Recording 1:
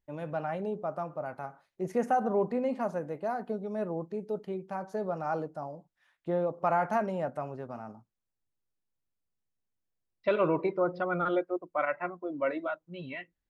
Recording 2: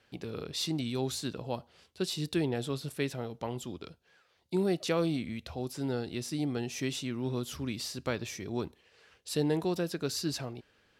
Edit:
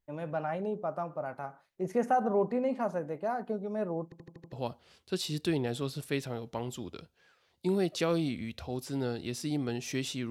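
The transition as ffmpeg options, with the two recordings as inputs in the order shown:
ffmpeg -i cue0.wav -i cue1.wav -filter_complex "[0:a]apad=whole_dur=10.3,atrim=end=10.3,asplit=6[link_01][link_02][link_03][link_04][link_05][link_06];[link_01]atrim=end=4.122[link_07];[link_02]atrim=start=4.038:end=4.122[link_08];[link_03]atrim=start=4.038:end=4.122[link_09];[link_04]atrim=start=4.038:end=4.122[link_10];[link_05]atrim=start=4.038:end=4.122[link_11];[link_06]atrim=start=4.038:end=4.122[link_12];[1:a]atrim=start=1.398:end=7.18[link_13];[link_07][link_08]acrossfade=duration=0.004:curve1=hsin:curve2=hsin[link_14];[link_14][link_09]acrossfade=duration=0.004:curve1=hsin:curve2=hsin[link_15];[link_15][link_10]acrossfade=duration=0.004:curve1=hsin:curve2=hsin[link_16];[link_16][link_11]acrossfade=duration=0.004:curve1=hsin:curve2=hsin[link_17];[link_17][link_12]acrossfade=duration=0.004:curve1=hsin:curve2=hsin[link_18];[link_18][link_13]acrossfade=duration=0.004:curve1=hsin:curve2=hsin" out.wav

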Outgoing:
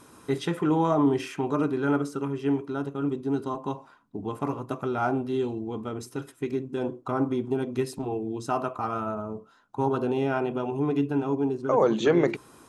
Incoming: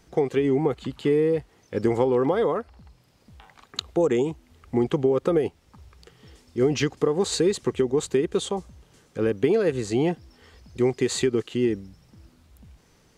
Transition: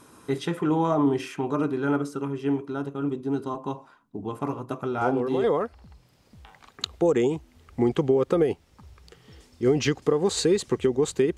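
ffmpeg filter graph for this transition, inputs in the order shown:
ffmpeg -i cue0.wav -i cue1.wav -filter_complex "[1:a]asplit=2[link_01][link_02];[0:a]apad=whole_dur=11.37,atrim=end=11.37,atrim=end=5.442[link_03];[link_02]atrim=start=2.388:end=8.32[link_04];[link_01]atrim=start=1.96:end=2.39,asetpts=PTS-STARTPTS,volume=-7.5dB,afade=type=in:duration=0.004:curve=hsin,afade=type=out:start_time=0.426:duration=0.004:curve=hsin,adelay=220941S[link_05];[link_03][link_04]acrossfade=duration=0.004:curve1=hsin:curve2=hsin[link_06];[link_06][link_05]amix=inputs=2:normalize=0" out.wav

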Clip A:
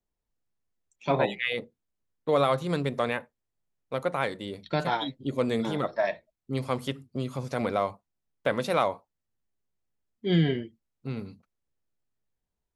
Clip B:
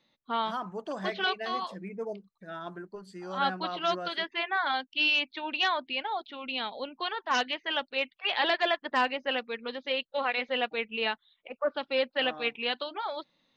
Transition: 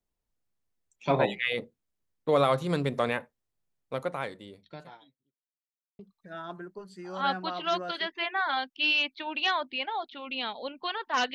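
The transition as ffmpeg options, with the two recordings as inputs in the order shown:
ffmpeg -i cue0.wav -i cue1.wav -filter_complex "[0:a]apad=whole_dur=11.34,atrim=end=11.34,asplit=2[link_01][link_02];[link_01]atrim=end=5.37,asetpts=PTS-STARTPTS,afade=type=out:start_time=3.76:duration=1.61:curve=qua[link_03];[link_02]atrim=start=5.37:end=5.99,asetpts=PTS-STARTPTS,volume=0[link_04];[1:a]atrim=start=2.16:end=7.51,asetpts=PTS-STARTPTS,afade=type=in:duration=0.004:curve=hsin[link_05];[link_03][link_04][link_05]concat=n=3:v=0:a=1" out.wav

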